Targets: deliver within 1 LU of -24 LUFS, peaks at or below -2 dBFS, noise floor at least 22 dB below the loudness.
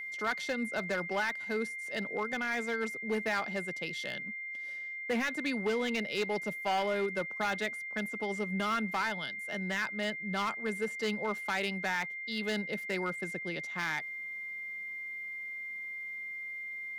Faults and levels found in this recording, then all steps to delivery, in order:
clipped samples 1.0%; clipping level -25.5 dBFS; steady tone 2.1 kHz; tone level -38 dBFS; loudness -34.0 LUFS; peak level -25.5 dBFS; loudness target -24.0 LUFS
-> clip repair -25.5 dBFS; band-stop 2.1 kHz, Q 30; trim +10 dB

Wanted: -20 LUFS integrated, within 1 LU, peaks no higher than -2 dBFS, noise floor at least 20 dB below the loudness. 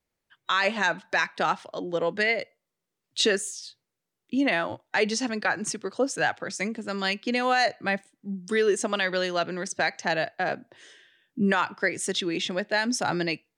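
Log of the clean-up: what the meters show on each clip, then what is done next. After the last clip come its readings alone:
loudness -26.5 LUFS; peak level -12.0 dBFS; loudness target -20.0 LUFS
-> trim +6.5 dB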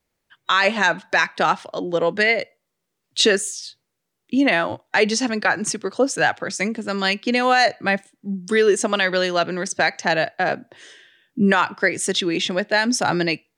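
loudness -20.0 LUFS; peak level -5.5 dBFS; noise floor -78 dBFS

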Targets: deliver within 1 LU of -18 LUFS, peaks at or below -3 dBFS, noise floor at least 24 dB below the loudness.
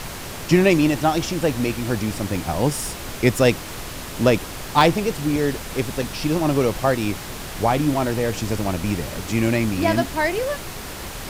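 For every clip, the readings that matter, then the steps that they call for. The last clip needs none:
dropouts 5; longest dropout 2.0 ms; noise floor -33 dBFS; noise floor target -46 dBFS; loudness -21.5 LUFS; peak level -3.5 dBFS; loudness target -18.0 LUFS
-> interpolate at 2.36/4.81/5.36/6.02/8.74 s, 2 ms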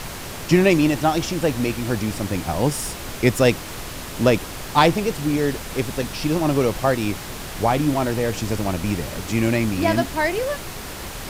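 dropouts 0; noise floor -33 dBFS; noise floor target -46 dBFS
-> noise print and reduce 13 dB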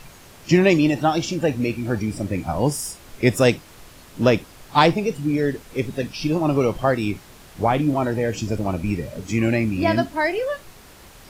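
noise floor -46 dBFS; loudness -21.5 LUFS; peak level -3.5 dBFS; loudness target -18.0 LUFS
-> trim +3.5 dB; peak limiter -3 dBFS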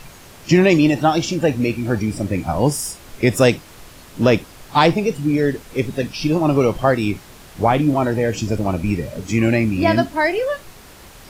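loudness -18.5 LUFS; peak level -3.0 dBFS; noise floor -43 dBFS

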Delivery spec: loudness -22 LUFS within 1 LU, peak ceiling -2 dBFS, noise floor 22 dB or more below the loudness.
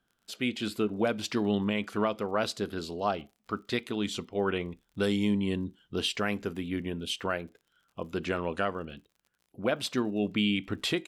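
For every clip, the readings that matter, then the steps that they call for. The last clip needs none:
tick rate 48 per s; loudness -31.5 LUFS; peak level -15.0 dBFS; loudness target -22.0 LUFS
-> de-click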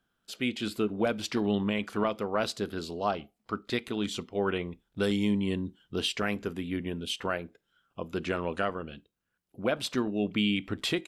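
tick rate 0.18 per s; loudness -31.5 LUFS; peak level -15.0 dBFS; loudness target -22.0 LUFS
-> trim +9.5 dB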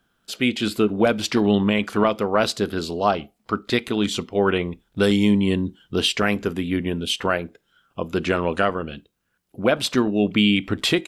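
loudness -22.0 LUFS; peak level -5.5 dBFS; noise floor -71 dBFS

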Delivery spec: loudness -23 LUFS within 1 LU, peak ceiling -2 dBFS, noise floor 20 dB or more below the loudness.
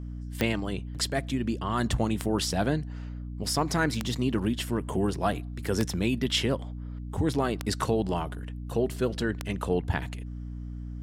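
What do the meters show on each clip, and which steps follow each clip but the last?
clicks found 6; hum 60 Hz; highest harmonic 300 Hz; hum level -35 dBFS; loudness -29.5 LUFS; peak level -11.0 dBFS; loudness target -23.0 LUFS
-> de-click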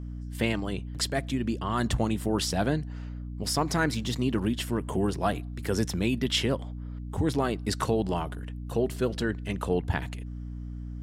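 clicks found 0; hum 60 Hz; highest harmonic 300 Hz; hum level -35 dBFS
-> de-hum 60 Hz, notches 5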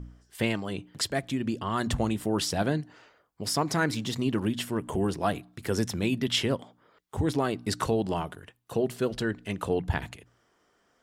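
hum not found; loudness -29.5 LUFS; peak level -12.0 dBFS; loudness target -23.0 LUFS
-> trim +6.5 dB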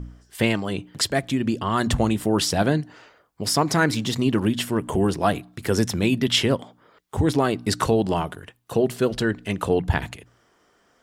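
loudness -23.0 LUFS; peak level -5.5 dBFS; noise floor -63 dBFS

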